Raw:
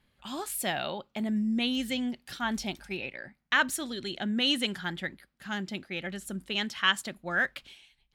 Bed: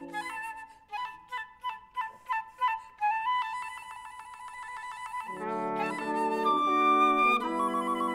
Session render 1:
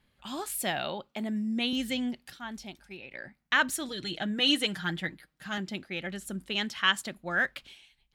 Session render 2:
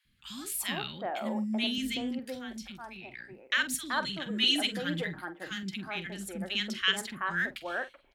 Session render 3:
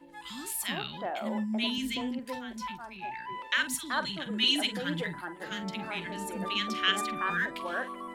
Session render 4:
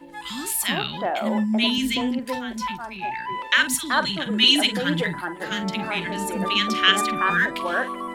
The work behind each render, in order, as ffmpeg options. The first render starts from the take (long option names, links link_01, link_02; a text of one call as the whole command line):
ffmpeg -i in.wav -filter_complex "[0:a]asettb=1/sr,asplit=3[link_01][link_02][link_03];[link_01]atrim=end=1.114[link_04];[link_02]atrim=start=1.11:end=1.73,asetpts=PTS-STARTPTS,afade=type=in:duration=0.004:curve=qsin,afade=type=out:start_time=0.616:duration=0.004:curve=qsin,highpass=210[link_05];[link_03]atrim=start=1.726[link_06];[link_04][link_05]acrossfade=duration=0.004:curve1=hsin:curve2=qsin[link_07];[link_07][link_06]acrossfade=duration=0.004:curve1=qsin:curve2=hsin,asettb=1/sr,asplit=3[link_08][link_09][link_10];[link_08]atrim=end=3.884[link_11];[link_09]atrim=start=3.88:end=5.58,asetpts=PTS-STARTPTS,afade=type=in:duration=0.004:curve=qsin,afade=type=out:start_time=1.696:duration=0.004:curve=qsin,aecho=1:1:6.4:0.65,atrim=end_sample=74970[link_12];[link_10]atrim=start=5.576[link_13];[link_11][link_12]acrossfade=duration=0.004:curve1=hsin:curve2=qsin[link_14];[link_14][link_13]acrossfade=duration=0.004:curve1=qsin:curve2=hsin,asplit=3[link_15][link_16][link_17];[link_15]atrim=end=2.302[link_18];[link_16]atrim=start=2.298:end=3.112,asetpts=PTS-STARTPTS,volume=-9dB[link_19];[link_17]atrim=start=3.108[link_20];[link_18][link_19]acrossfade=duration=0.004:curve1=hsin:curve2=hsin[link_21];[link_21][link_20]acrossfade=duration=0.004:curve1=hsin:curve2=hsin" out.wav
ffmpeg -i in.wav -filter_complex "[0:a]asplit=2[link_01][link_02];[link_02]adelay=46,volume=-12.5dB[link_03];[link_01][link_03]amix=inputs=2:normalize=0,acrossover=split=310|1400[link_04][link_05][link_06];[link_04]adelay=50[link_07];[link_05]adelay=380[link_08];[link_07][link_08][link_06]amix=inputs=3:normalize=0" out.wav
ffmpeg -i in.wav -i bed.wav -filter_complex "[1:a]volume=-11dB[link_01];[0:a][link_01]amix=inputs=2:normalize=0" out.wav
ffmpeg -i in.wav -af "volume=9.5dB" out.wav